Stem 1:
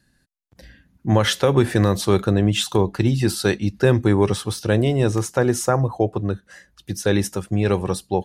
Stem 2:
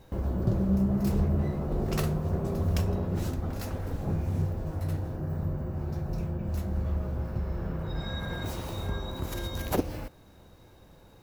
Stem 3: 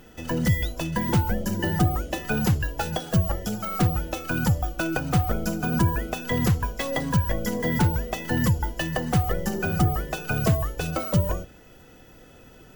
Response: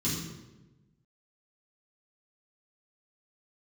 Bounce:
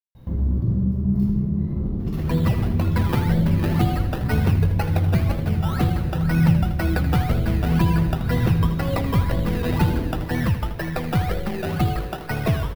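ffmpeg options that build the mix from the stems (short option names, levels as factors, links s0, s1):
-filter_complex "[1:a]lowshelf=f=170:g=6,acompressor=threshold=0.0316:ratio=3,adelay=150,volume=0.75,asplit=3[s0][s1][s2];[s1]volume=0.422[s3];[s2]volume=0.266[s4];[2:a]highshelf=f=7800:g=-8.5,acrusher=samples=16:mix=1:aa=0.000001:lfo=1:lforange=9.6:lforate=2,adelay=2000,volume=1.06,asplit=2[s5][s6];[s6]volume=0.266[s7];[s0]asubboost=boost=6:cutoff=200,acompressor=threshold=0.0447:ratio=6,volume=1[s8];[3:a]atrim=start_sample=2205[s9];[s3][s9]afir=irnorm=-1:irlink=0[s10];[s4][s7]amix=inputs=2:normalize=0,aecho=0:1:80|160|240|320|400|480|560|640|720:1|0.57|0.325|0.185|0.106|0.0602|0.0343|0.0195|0.0111[s11];[s5][s8][s10][s11]amix=inputs=4:normalize=0,equalizer=f=7200:t=o:w=1:g=-11.5"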